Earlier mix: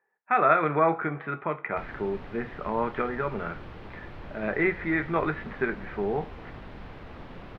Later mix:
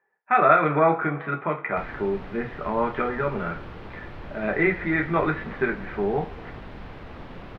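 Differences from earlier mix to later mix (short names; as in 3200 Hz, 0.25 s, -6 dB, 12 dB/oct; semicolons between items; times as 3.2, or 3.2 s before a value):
speech: send +8.5 dB; background +3.0 dB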